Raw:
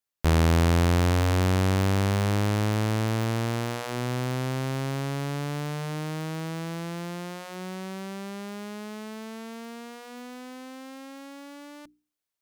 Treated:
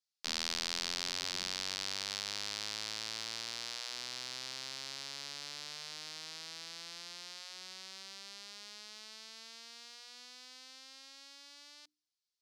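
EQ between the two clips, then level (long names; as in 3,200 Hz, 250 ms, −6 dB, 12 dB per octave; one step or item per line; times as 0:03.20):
resonant band-pass 4,700 Hz, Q 2.6
+5.0 dB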